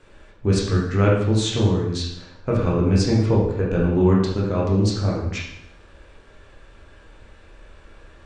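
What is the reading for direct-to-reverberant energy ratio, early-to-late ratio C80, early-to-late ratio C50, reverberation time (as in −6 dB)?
−4.5 dB, 5.5 dB, 2.5 dB, 0.80 s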